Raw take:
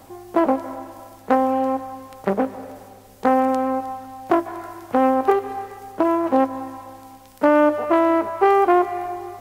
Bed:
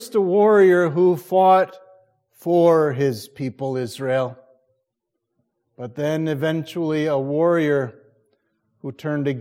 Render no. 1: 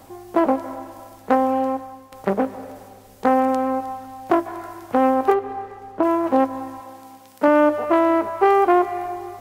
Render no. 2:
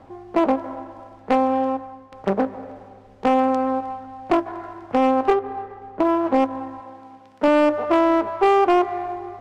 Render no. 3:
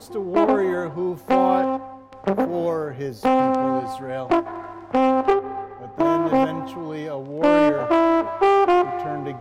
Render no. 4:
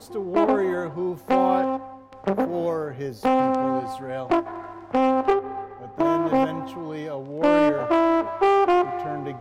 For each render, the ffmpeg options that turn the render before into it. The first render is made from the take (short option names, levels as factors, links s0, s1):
-filter_complex "[0:a]asettb=1/sr,asplit=3[s0][s1][s2];[s0]atrim=end=5.344[s3];[s1]atrim=start=5.34:end=6.03,asetpts=PTS-STARTPTS,afade=t=in:d=0.004:c=qsin,afade=t=out:st=0.686:d=0.004:c=qsin,lowpass=f=1900:p=1[s4];[s2]atrim=start=6.026[s5];[s3][s4]acrossfade=d=0.004:c1=hsin:c2=qsin[s6];[s6][s5]acrossfade=d=0.004:c1=qsin:c2=hsin,asettb=1/sr,asplit=3[s7][s8][s9];[s7]atrim=end=6.804[s10];[s8]atrim=start=6.8:end=7.48,asetpts=PTS-STARTPTS,afade=t=in:d=0.004:c=qsin,afade=t=out:st=0.676:d=0.004:c=qsin,highpass=130[s11];[s9]atrim=start=7.476[s12];[s10][s11]acrossfade=d=0.004:c1=hsin:c2=qsin[s13];[s13][s12]acrossfade=d=0.004:c1=qsin:c2=hsin,asplit=2[s14][s15];[s14]atrim=end=2.12,asetpts=PTS-STARTPTS,afade=t=out:st=1.59:d=0.53:silence=0.375837[s16];[s15]atrim=start=2.12,asetpts=PTS-STARTPTS,afade=t=in:d=0.004:c=hsin:silence=0.375837[s17];[s16][s17]concat=n=2:v=0:a=1"
-af "asoftclip=type=hard:threshold=0.355,adynamicsmooth=sensitivity=2.5:basefreq=2500"
-filter_complex "[1:a]volume=0.355[s0];[0:a][s0]amix=inputs=2:normalize=0"
-af "volume=0.794"